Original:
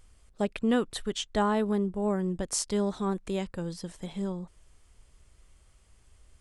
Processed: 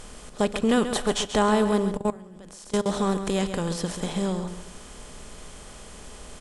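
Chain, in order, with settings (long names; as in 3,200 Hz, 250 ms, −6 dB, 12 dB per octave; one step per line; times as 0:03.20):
compressor on every frequency bin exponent 0.6
0:00.88–0:01.36: parametric band 760 Hz +9 dB 1 octave
repeating echo 135 ms, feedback 29%, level −10 dB
0:01.97–0:02.86: output level in coarse steps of 24 dB
rectangular room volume 2,200 cubic metres, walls furnished, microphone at 0.39 metres
level +3 dB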